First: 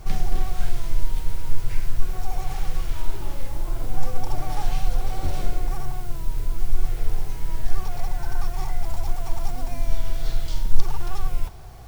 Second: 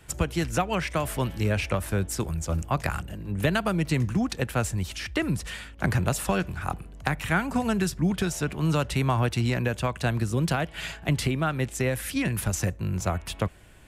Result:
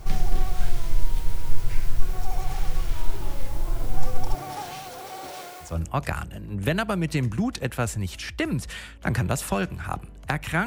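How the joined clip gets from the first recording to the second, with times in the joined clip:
first
0:04.33–0:05.78: high-pass filter 150 Hz → 760 Hz
0:05.69: continue with second from 0:02.46, crossfade 0.18 s

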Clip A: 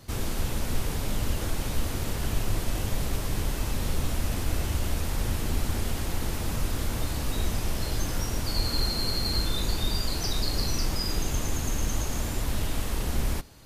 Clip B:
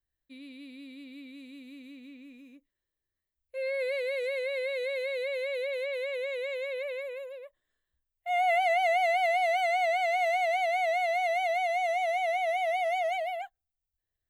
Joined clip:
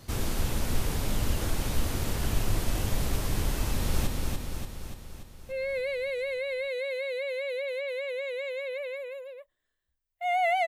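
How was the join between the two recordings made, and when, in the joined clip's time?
clip A
0:03.64–0:04.07: delay throw 290 ms, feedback 60%, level −3.5 dB
0:04.07: continue with clip B from 0:02.12

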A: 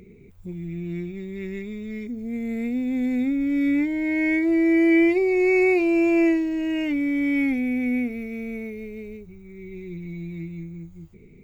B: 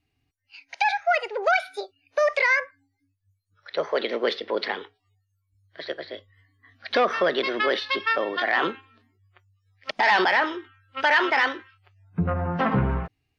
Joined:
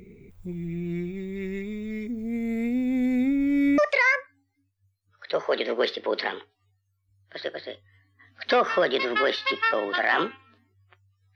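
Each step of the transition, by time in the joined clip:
A
0:03.78: continue with B from 0:02.22

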